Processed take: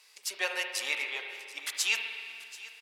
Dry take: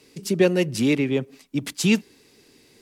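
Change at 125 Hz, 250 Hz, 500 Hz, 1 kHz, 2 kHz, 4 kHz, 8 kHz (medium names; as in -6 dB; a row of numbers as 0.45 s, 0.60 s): under -40 dB, -36.5 dB, -20.5 dB, -3.0 dB, -0.5 dB, -1.0 dB, -2.0 dB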